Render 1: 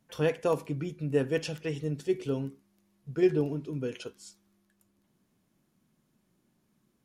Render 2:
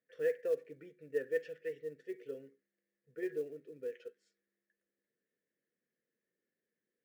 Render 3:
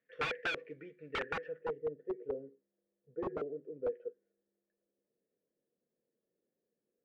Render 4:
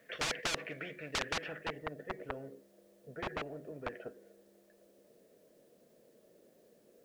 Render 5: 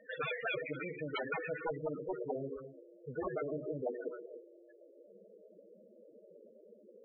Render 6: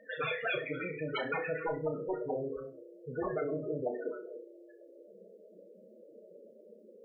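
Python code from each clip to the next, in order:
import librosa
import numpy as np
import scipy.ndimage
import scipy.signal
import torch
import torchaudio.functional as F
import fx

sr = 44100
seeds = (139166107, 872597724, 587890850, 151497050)

y1 = fx.double_bandpass(x, sr, hz=930.0, octaves=1.9)
y1 = fx.quant_float(y1, sr, bits=4)
y1 = y1 * 10.0 ** (-3.0 / 20.0)
y2 = (np.mod(10.0 ** (33.0 / 20.0) * y1 + 1.0, 2.0) - 1.0) / 10.0 ** (33.0 / 20.0)
y2 = fx.filter_sweep_lowpass(y2, sr, from_hz=2500.0, to_hz=680.0, start_s=1.17, end_s=1.81, q=1.4)
y2 = y2 * 10.0 ** (3.0 / 20.0)
y3 = fx.peak_eq(y2, sr, hz=630.0, db=9.5, octaves=0.35)
y3 = fx.spectral_comp(y3, sr, ratio=4.0)
y3 = y3 * 10.0 ** (5.5 / 20.0)
y4 = fx.rev_gated(y3, sr, seeds[0], gate_ms=320, shape='rising', drr_db=8.5)
y4 = fx.spec_topn(y4, sr, count=8)
y4 = y4 * 10.0 ** (7.5 / 20.0)
y5 = fx.room_flutter(y4, sr, wall_m=5.5, rt60_s=0.28)
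y5 = y5 * 10.0 ** (2.5 / 20.0)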